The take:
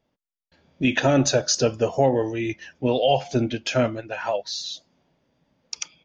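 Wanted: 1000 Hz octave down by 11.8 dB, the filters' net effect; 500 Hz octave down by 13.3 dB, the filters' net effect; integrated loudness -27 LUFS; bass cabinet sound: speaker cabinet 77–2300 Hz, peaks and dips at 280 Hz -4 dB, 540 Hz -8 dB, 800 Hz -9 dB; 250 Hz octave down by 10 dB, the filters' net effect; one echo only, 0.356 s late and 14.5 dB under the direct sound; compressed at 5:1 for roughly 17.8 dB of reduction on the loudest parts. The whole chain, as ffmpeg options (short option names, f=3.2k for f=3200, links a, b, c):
-af "equalizer=f=250:t=o:g=-7,equalizer=f=500:t=o:g=-6.5,equalizer=f=1k:t=o:g=-6,acompressor=threshold=-40dB:ratio=5,highpass=f=77:w=0.5412,highpass=f=77:w=1.3066,equalizer=f=280:t=q:w=4:g=-4,equalizer=f=540:t=q:w=4:g=-8,equalizer=f=800:t=q:w=4:g=-9,lowpass=f=2.3k:w=0.5412,lowpass=f=2.3k:w=1.3066,aecho=1:1:356:0.188,volume=19dB"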